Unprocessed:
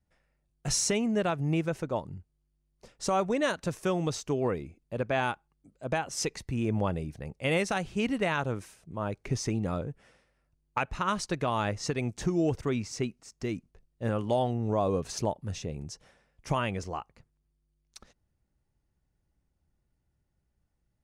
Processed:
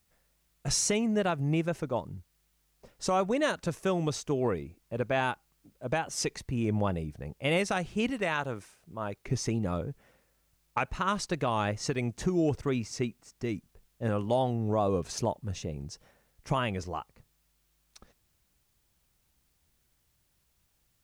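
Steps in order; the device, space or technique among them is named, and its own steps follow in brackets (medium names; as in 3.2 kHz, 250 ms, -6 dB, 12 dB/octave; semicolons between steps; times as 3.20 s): 8.10–9.28 s: bass shelf 390 Hz -6 dB; plain cassette with noise reduction switched in (tape noise reduction on one side only decoder only; wow and flutter; white noise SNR 42 dB)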